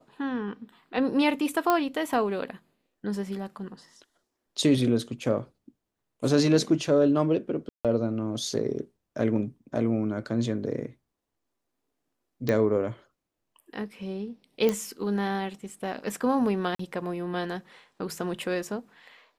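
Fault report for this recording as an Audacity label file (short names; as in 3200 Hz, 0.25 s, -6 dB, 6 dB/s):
1.700000	1.700000	pop -9 dBFS
7.690000	7.850000	gap 0.157 s
12.490000	12.490000	pop -14 dBFS
14.690000	14.690000	pop -12 dBFS
16.750000	16.790000	gap 44 ms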